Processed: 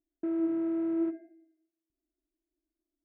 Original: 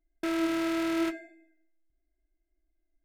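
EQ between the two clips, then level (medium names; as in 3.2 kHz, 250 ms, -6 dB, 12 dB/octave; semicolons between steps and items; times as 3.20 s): band-pass filter 280 Hz, Q 1.3; distance through air 480 m; +1.5 dB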